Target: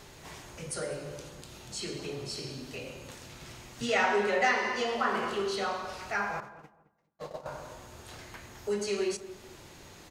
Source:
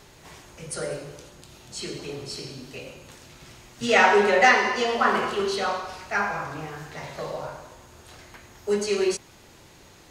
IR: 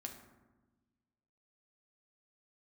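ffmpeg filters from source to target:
-filter_complex "[0:a]asettb=1/sr,asplit=3[link_01][link_02][link_03];[link_01]atrim=end=6.404[link_04];[link_02]atrim=start=6.4:end=7.46,asetpts=PTS-STARTPTS,afade=type=in:duration=0.004:curve=qsin,afade=type=out:start_time=1.056:duration=0.004:curve=qsin,agate=range=-59dB:threshold=-30dB:ratio=16:detection=peak[link_05];[link_03]atrim=start=7.456[link_06];[link_04][link_05]acrossfade=duration=0.004:curve1=hsin:curve2=qsin[link_07];[link_07][link_06]acrossfade=duration=0.004:curve1=qsin:curve2=hsin,acompressor=threshold=-40dB:ratio=1.5,asplit=2[link_08][link_09];[link_09]adelay=216,lowpass=frequency=1200:poles=1,volume=-13.5dB,asplit=2[link_10][link_11];[link_11]adelay=216,lowpass=frequency=1200:poles=1,volume=0.23,asplit=2[link_12][link_13];[link_13]adelay=216,lowpass=frequency=1200:poles=1,volume=0.23[link_14];[link_08][link_10][link_12][link_14]amix=inputs=4:normalize=0,asplit=2[link_15][link_16];[1:a]atrim=start_sample=2205,adelay=35[link_17];[link_16][link_17]afir=irnorm=-1:irlink=0,volume=-13dB[link_18];[link_15][link_18]amix=inputs=2:normalize=0"

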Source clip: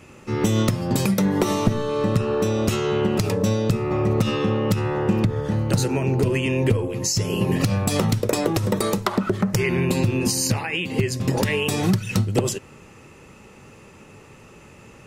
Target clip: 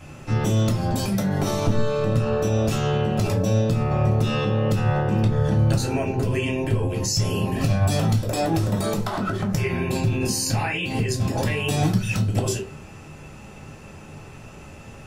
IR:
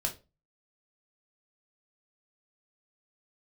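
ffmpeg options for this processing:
-filter_complex "[0:a]alimiter=limit=-18dB:level=0:latency=1:release=86[link_01];[1:a]atrim=start_sample=2205[link_02];[link_01][link_02]afir=irnorm=-1:irlink=0"

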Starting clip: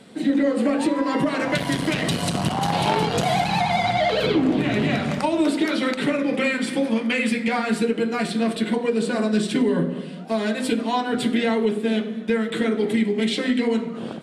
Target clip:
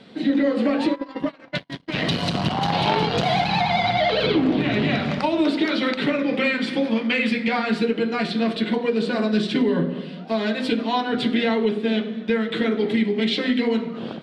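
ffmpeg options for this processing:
ffmpeg -i in.wav -filter_complex "[0:a]highshelf=frequency=6200:width_type=q:width=1.5:gain=-13.5,asplit=3[link_01][link_02][link_03];[link_01]afade=type=out:start_time=0.94:duration=0.02[link_04];[link_02]agate=range=-50dB:threshold=-19dB:ratio=16:detection=peak,afade=type=in:start_time=0.94:duration=0.02,afade=type=out:start_time=1.93:duration=0.02[link_05];[link_03]afade=type=in:start_time=1.93:duration=0.02[link_06];[link_04][link_05][link_06]amix=inputs=3:normalize=0" out.wav

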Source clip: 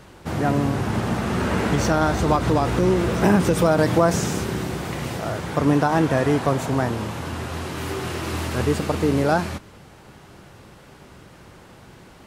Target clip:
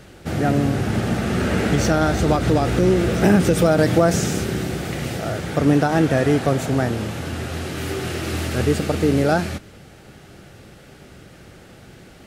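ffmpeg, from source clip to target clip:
ffmpeg -i in.wav -af "equalizer=frequency=1000:width=4.2:gain=-13,volume=2.5dB" out.wav

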